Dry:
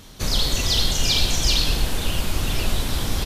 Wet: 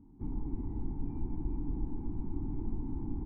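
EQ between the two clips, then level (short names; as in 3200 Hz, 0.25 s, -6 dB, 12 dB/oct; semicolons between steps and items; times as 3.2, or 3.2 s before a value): vocal tract filter u; air absorption 320 m; fixed phaser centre 1400 Hz, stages 4; +2.0 dB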